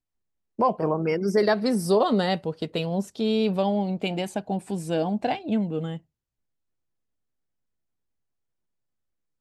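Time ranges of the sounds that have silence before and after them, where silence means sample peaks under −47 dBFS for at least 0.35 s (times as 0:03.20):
0:00.59–0:05.99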